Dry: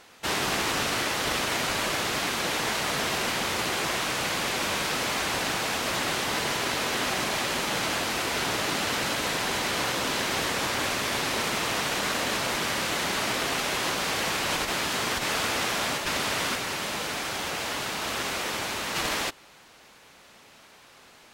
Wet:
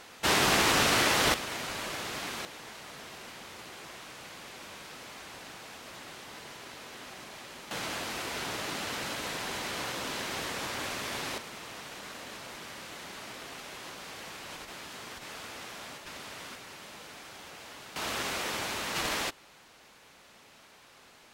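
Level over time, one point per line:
+2.5 dB
from 0:01.34 −9 dB
from 0:02.45 −18 dB
from 0:07.71 −8 dB
from 0:11.38 −16 dB
from 0:17.96 −3.5 dB

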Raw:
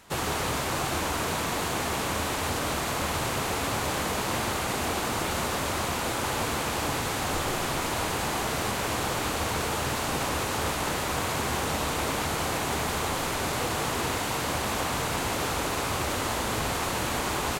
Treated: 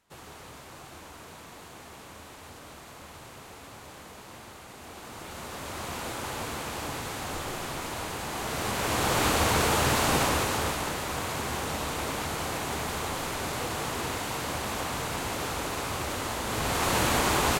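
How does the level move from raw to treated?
0:04.74 −17.5 dB
0:05.96 −6 dB
0:08.26 −6 dB
0:09.23 +4.5 dB
0:10.16 +4.5 dB
0:10.95 −3.5 dB
0:16.42 −3.5 dB
0:16.95 +4 dB

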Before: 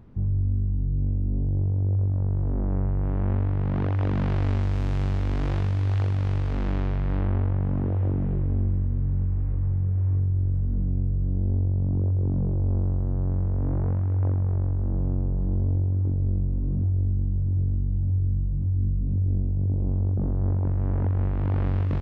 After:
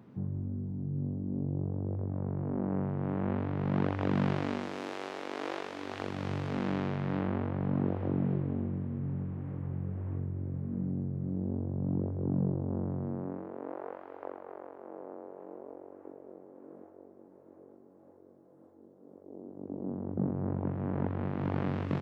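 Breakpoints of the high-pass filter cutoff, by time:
high-pass filter 24 dB per octave
0:04.30 140 Hz
0:04.97 350 Hz
0:05.63 350 Hz
0:06.32 140 Hz
0:13.02 140 Hz
0:13.77 430 Hz
0:19.17 430 Hz
0:20.28 140 Hz

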